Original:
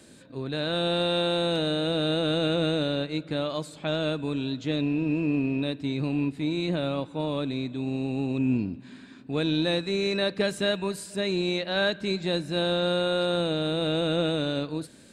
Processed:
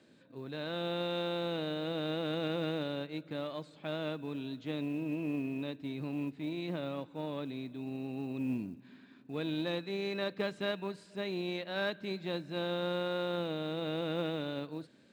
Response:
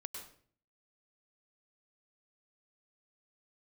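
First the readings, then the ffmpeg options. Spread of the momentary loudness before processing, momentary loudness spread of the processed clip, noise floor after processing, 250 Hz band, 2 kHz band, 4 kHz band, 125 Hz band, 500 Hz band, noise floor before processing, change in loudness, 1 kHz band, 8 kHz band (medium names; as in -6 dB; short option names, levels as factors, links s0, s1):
6 LU, 7 LU, -59 dBFS, -9.5 dB, -9.0 dB, -12.0 dB, -10.5 dB, -9.0 dB, -49 dBFS, -9.5 dB, -7.5 dB, under -15 dB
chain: -af "aeval=exprs='0.224*(cos(1*acos(clip(val(0)/0.224,-1,1)))-cos(1*PI/2))+0.0158*(cos(3*acos(clip(val(0)/0.224,-1,1)))-cos(3*PI/2))+0.0158*(cos(4*acos(clip(val(0)/0.224,-1,1)))-cos(4*PI/2))+0.00251*(cos(6*acos(clip(val(0)/0.224,-1,1)))-cos(6*PI/2))':c=same,highpass=120,lowpass=3900,acrusher=bits=9:mode=log:mix=0:aa=0.000001,volume=0.422"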